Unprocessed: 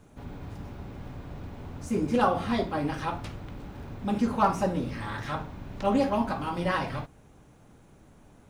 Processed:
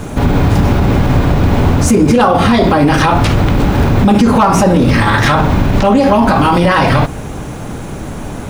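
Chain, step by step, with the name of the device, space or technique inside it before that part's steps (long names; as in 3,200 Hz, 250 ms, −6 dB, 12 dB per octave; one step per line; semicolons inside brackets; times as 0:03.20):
loud club master (downward compressor 3 to 1, threshold −29 dBFS, peak gain reduction 9 dB; hard clipping −22 dBFS, distortion −30 dB; boost into a limiter +32.5 dB)
level −1 dB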